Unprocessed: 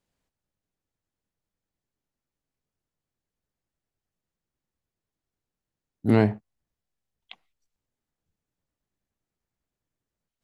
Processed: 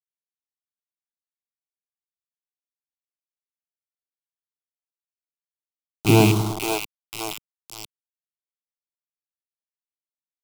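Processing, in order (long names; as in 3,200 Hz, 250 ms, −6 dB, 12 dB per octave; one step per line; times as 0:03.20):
loose part that buzzes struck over −28 dBFS, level −15 dBFS
high-shelf EQ 3,600 Hz +8 dB
on a send: echo with a time of its own for lows and highs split 370 Hz, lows 102 ms, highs 531 ms, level −6 dB
on the sum: dynamic equaliser 170 Hz, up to +5 dB, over −33 dBFS, Q 0.82
mains-hum notches 60/120/180/240/300/360/420/480/540 Hz
bit reduction 5 bits
phaser with its sweep stopped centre 350 Hz, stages 8
level +6.5 dB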